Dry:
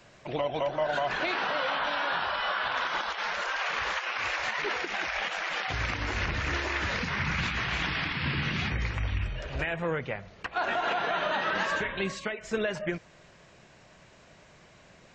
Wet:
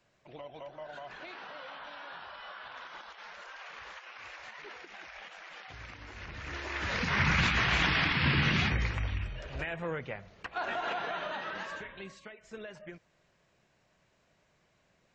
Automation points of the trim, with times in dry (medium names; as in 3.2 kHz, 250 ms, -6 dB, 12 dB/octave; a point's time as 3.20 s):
6.15 s -16 dB
6.62 s -8.5 dB
7.20 s +3 dB
8.55 s +3 dB
9.28 s -5.5 dB
10.94 s -5.5 dB
12.15 s -15 dB